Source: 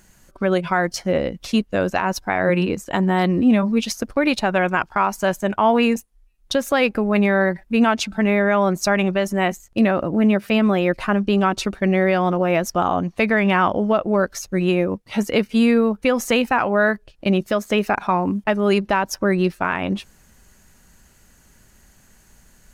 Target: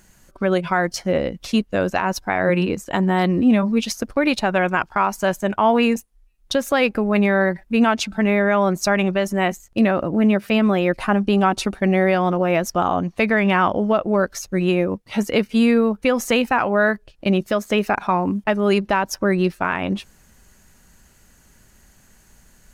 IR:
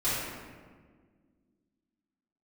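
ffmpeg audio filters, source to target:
-filter_complex "[0:a]asettb=1/sr,asplit=3[link_01][link_02][link_03];[link_01]atrim=end=10.974[link_04];[link_02]atrim=start=10.97:end=12.15,asetpts=PTS-STARTPTS,afade=type=in:duration=0.004:curve=qsin,afade=type=out:start_time=1.176:duration=0.004:curve=qsin,equalizer=frequency=250:width_type=o:width=0.33:gain=3,equalizer=frequency=800:width_type=o:width=0.33:gain=5,equalizer=frequency=10000:width_type=o:width=0.33:gain=6[link_05];[link_03]atrim=start=12.146[link_06];[link_04][link_05]acrossfade=duration=0.004:curve1=hsin:curve2=qsin[link_07];[link_07][link_06]acrossfade=duration=0.004:curve1=qsin:curve2=hsin"

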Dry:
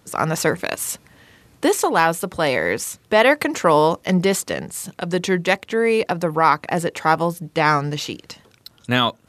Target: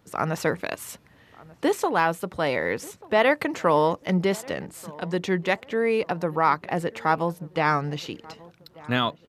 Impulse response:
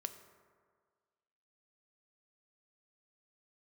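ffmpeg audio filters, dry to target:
-filter_complex "[0:a]equalizer=frequency=9000:width=0.57:gain=-9,asplit=2[link_01][link_02];[link_02]adelay=1188,lowpass=frequency=1600:poles=1,volume=-21.5dB,asplit=2[link_03][link_04];[link_04]adelay=1188,lowpass=frequency=1600:poles=1,volume=0.36,asplit=2[link_05][link_06];[link_06]adelay=1188,lowpass=frequency=1600:poles=1,volume=0.36[link_07];[link_01][link_03][link_05][link_07]amix=inputs=4:normalize=0,volume=-5dB"

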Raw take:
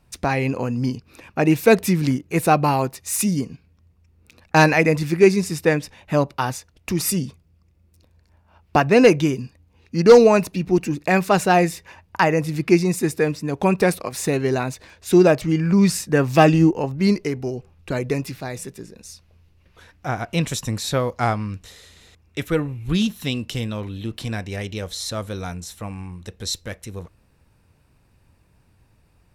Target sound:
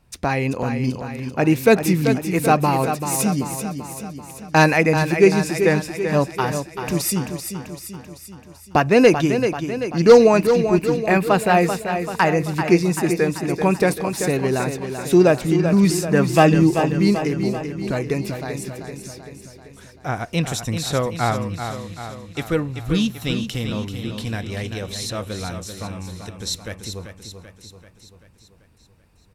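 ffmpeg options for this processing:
ffmpeg -i in.wav -filter_complex "[0:a]asettb=1/sr,asplit=3[link_01][link_02][link_03];[link_01]atrim=end=10.384[link_04];[link_02]atrim=start=10.38:end=11.57,asetpts=PTS-STARTPTS,afade=type=in:duration=0.004:curve=qsin,afade=type=out:start_time=1.186:duration=0.004:curve=qsin,equalizer=frequency=6000:width_type=o:width=0.34:gain=-14.5[link_05];[link_03]atrim=start=11.566[link_06];[link_04][link_05]acrossfade=duration=0.004:curve1=hsin:curve2=qsin[link_07];[link_07][link_06]acrossfade=duration=0.004:curve1=qsin:curve2=hsin,aecho=1:1:387|774|1161|1548|1935|2322|2709:0.398|0.223|0.125|0.0699|0.0392|0.0219|0.0123" out.wav

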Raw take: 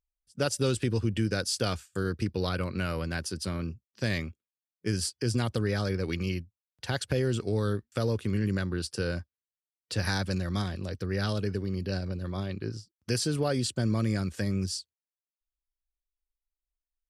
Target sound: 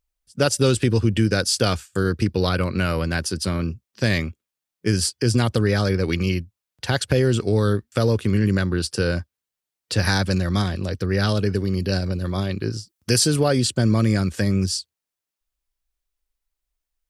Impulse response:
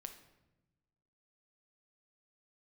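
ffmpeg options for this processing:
-filter_complex "[0:a]asettb=1/sr,asplit=3[link_01][link_02][link_03];[link_01]atrim=end=11.554[link_04];[link_02]atrim=start=11.55:end=13.43,asetpts=PTS-STARTPTS,afade=type=in:duration=0.004:curve=qsin,afade=type=out:start_time=1.876:duration=0.004:curve=qsin,highshelf=frequency=5700:gain=7[link_05];[link_03]atrim=start=13.426[link_06];[link_04][link_05]acrossfade=duration=0.004:curve1=hsin:curve2=qsin[link_07];[link_07][link_06]acrossfade=duration=0.004:curve1=qsin:curve2=hsin,volume=9dB"

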